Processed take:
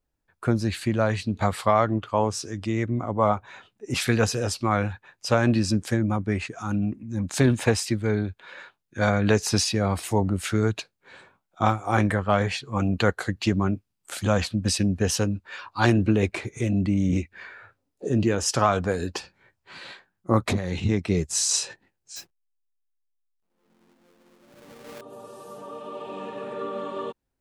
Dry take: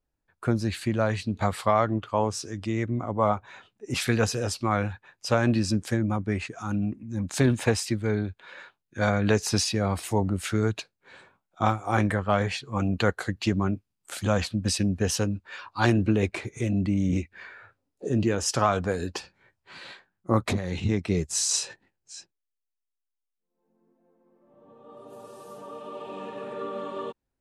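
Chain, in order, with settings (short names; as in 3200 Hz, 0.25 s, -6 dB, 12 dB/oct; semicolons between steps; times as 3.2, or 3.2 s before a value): 22.16–25.01 half-waves squared off; gain +2 dB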